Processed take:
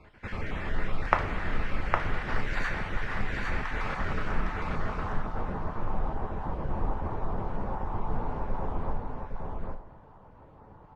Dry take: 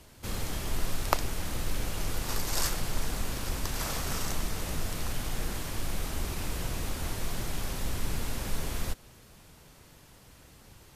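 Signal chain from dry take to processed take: random spectral dropouts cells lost 22%; low-pass sweep 1900 Hz -> 930 Hz, 3.82–5.37; echo 0.81 s -3.5 dB; on a send at -5 dB: reverb, pre-delay 3 ms

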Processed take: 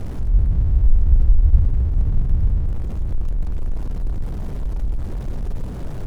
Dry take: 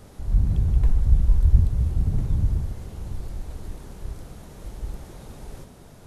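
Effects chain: zero-crossing step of -18.5 dBFS; tilt -3.5 dB/oct; gain -14.5 dB

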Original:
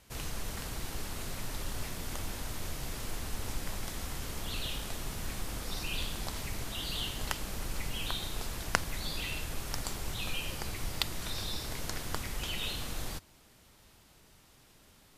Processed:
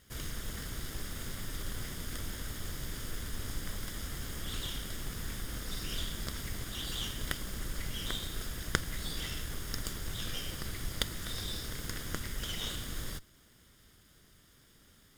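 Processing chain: minimum comb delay 0.58 ms

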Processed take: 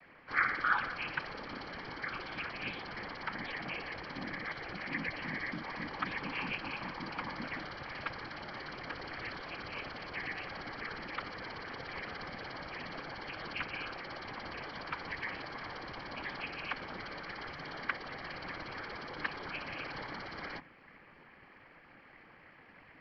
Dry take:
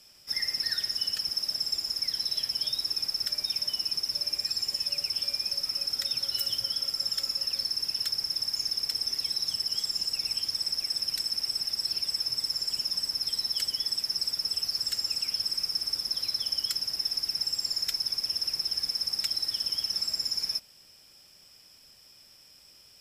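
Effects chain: noise vocoder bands 16; mistuned SSB -370 Hz 460–2500 Hz; gain +12.5 dB

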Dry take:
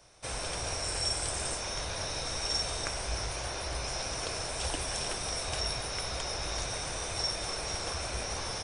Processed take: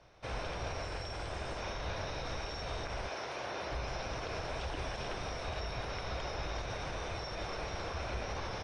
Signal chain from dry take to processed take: 3.07–3.71 HPF 360 Hz -> 130 Hz 12 dB/oct; limiter -26.5 dBFS, peak gain reduction 9 dB; air absorption 240 m; gain +1 dB

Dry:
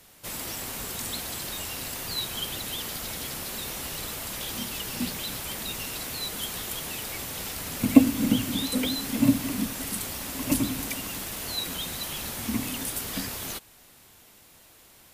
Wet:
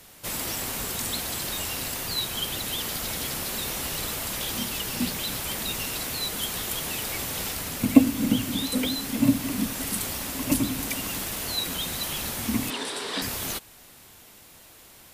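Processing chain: in parallel at +1.5 dB: vocal rider within 4 dB 0.5 s; 12.7–13.22 on the sum: speaker cabinet 290–8400 Hz, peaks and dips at 420 Hz +10 dB, 980 Hz +7 dB, 1700 Hz +4 dB, 3800 Hz +7 dB, 6600 Hz -8 dB; gain -5 dB

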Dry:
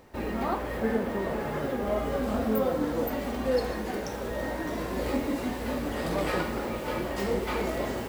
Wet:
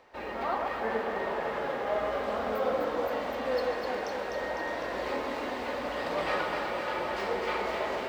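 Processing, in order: three-band isolator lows -16 dB, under 470 Hz, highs -17 dB, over 5200 Hz; echo with dull and thin repeats by turns 0.126 s, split 1200 Hz, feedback 83%, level -3 dB

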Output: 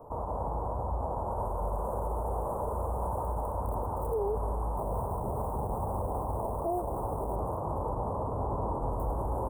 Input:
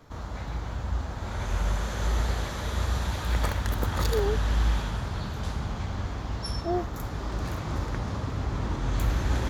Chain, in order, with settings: tracing distortion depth 0.23 ms; 4.77–7.36 decimation with a swept rate 16×, swing 160% 2.5 Hz; band shelf 900 Hz +11.5 dB 2.5 oct; limiter -22.5 dBFS, peak gain reduction 17 dB; Chebyshev band-stop 1000–8700 Hz, order 4; echo 0.248 s -14 dB

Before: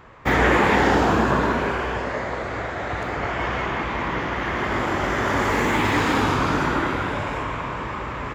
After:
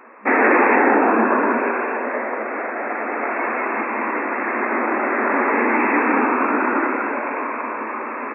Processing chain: FFT band-pass 210–2700 Hz; gain +3.5 dB

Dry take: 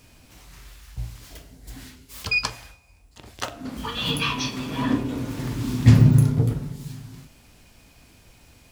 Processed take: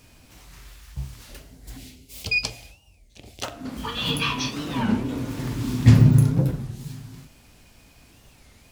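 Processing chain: 1.77–3.44 band shelf 1300 Hz -13 dB 1.2 oct; record warp 33 1/3 rpm, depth 250 cents

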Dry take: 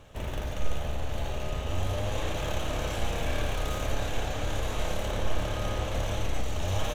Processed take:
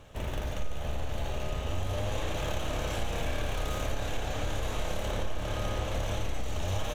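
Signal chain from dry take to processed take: compressor 4:1, threshold -26 dBFS, peak gain reduction 7.5 dB

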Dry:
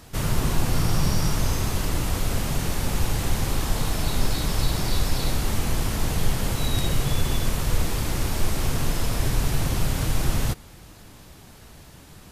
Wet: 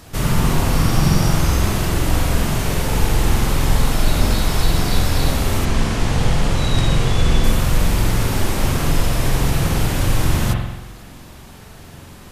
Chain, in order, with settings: 5.65–7.44 LPF 7800 Hz 12 dB/oct; spring tank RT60 1 s, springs 45 ms, chirp 80 ms, DRR 0 dB; gain +4.5 dB

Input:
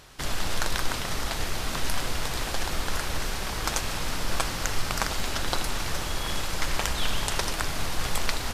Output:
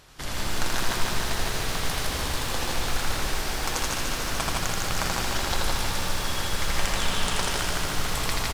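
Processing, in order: 6.77–7.43 steep low-pass 12000 Hz; loudspeakers at several distances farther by 28 m -3 dB, 56 m -3 dB; lo-fi delay 0.147 s, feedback 80%, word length 7-bit, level -5 dB; gain -3 dB

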